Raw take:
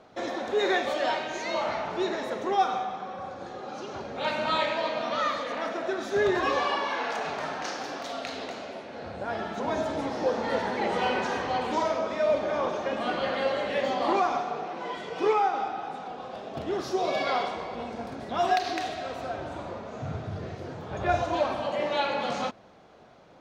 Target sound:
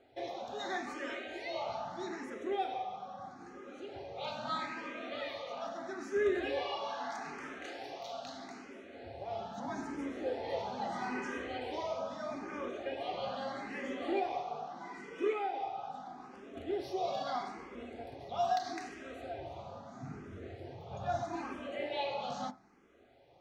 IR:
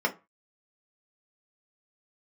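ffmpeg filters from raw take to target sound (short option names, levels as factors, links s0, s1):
-filter_complex "[0:a]asplit=2[s0][s1];[1:a]atrim=start_sample=2205[s2];[s1][s2]afir=irnorm=-1:irlink=0,volume=0.15[s3];[s0][s3]amix=inputs=2:normalize=0,asplit=2[s4][s5];[s5]afreqshift=0.78[s6];[s4][s6]amix=inputs=2:normalize=1,volume=0.473"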